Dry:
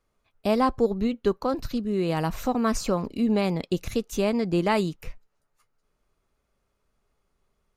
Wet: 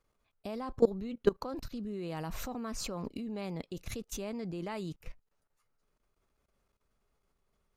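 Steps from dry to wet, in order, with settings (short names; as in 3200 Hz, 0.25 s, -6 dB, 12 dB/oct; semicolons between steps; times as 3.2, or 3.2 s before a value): level quantiser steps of 19 dB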